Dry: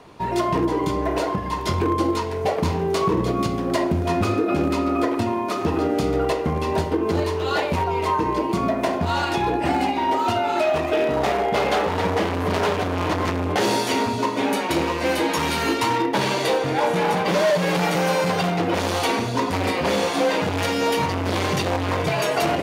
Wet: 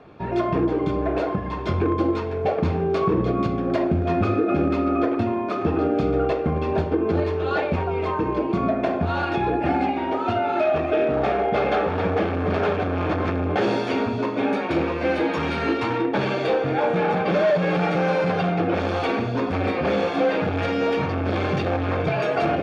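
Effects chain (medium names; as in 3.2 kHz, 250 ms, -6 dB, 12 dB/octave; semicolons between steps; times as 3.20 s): low-pass 2.6 kHz 12 dB/octave; bass shelf 73 Hz +10 dB; comb of notches 990 Hz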